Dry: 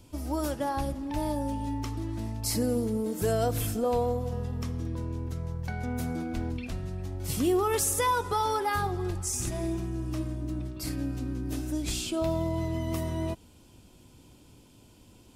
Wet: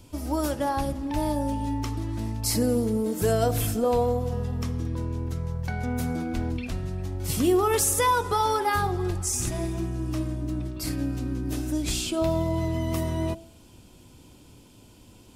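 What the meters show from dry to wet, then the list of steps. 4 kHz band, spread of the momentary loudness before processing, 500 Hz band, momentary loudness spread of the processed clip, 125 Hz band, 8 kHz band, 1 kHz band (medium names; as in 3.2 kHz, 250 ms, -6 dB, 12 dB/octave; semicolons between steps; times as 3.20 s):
+4.0 dB, 8 LU, +4.0 dB, 9 LU, +4.0 dB, +4.0 dB, +4.0 dB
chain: de-hum 66.15 Hz, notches 13; trim +4 dB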